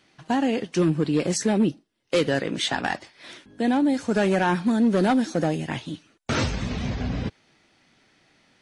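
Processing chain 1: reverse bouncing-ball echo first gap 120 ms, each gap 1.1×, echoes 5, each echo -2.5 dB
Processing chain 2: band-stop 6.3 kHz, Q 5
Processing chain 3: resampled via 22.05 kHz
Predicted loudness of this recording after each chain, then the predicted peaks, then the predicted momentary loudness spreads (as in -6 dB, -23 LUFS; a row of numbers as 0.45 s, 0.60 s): -21.0 LUFS, -24.5 LUFS, -24.5 LUFS; -6.0 dBFS, -10.5 dBFS, -11.0 dBFS; 10 LU, 12 LU, 12 LU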